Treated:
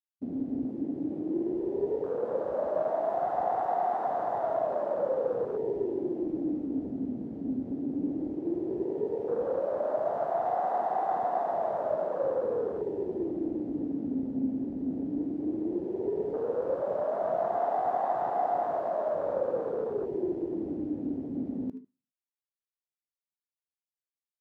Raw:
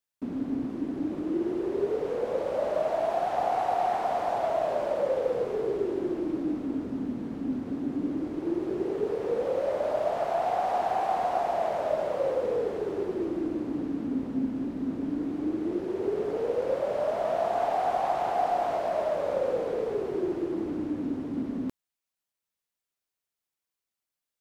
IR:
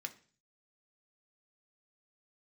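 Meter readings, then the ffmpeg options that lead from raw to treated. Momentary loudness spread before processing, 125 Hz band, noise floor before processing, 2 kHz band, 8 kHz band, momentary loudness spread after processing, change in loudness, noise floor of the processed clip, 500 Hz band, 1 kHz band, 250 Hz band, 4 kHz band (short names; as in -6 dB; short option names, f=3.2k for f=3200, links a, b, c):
5 LU, -2.5 dB, under -85 dBFS, -7.0 dB, n/a, 5 LU, -2.0 dB, under -85 dBFS, -2.0 dB, -2.0 dB, -1.5 dB, under -15 dB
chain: -filter_complex "[0:a]asplit=2[a][b];[1:a]atrim=start_sample=2205,adelay=76[c];[b][c]afir=irnorm=-1:irlink=0,volume=-7dB[d];[a][d]amix=inputs=2:normalize=0,afwtdn=0.02,volume=-2dB"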